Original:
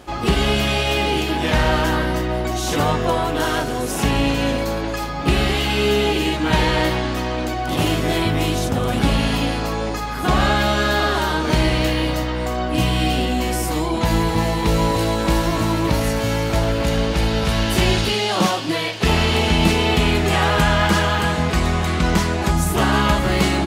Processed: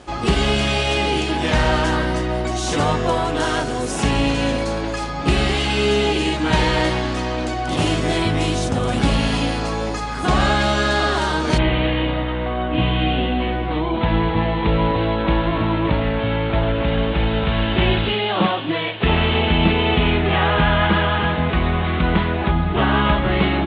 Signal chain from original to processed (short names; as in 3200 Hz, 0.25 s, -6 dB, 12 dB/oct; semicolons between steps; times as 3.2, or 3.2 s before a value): steep low-pass 10000 Hz 72 dB/oct, from 11.57 s 3700 Hz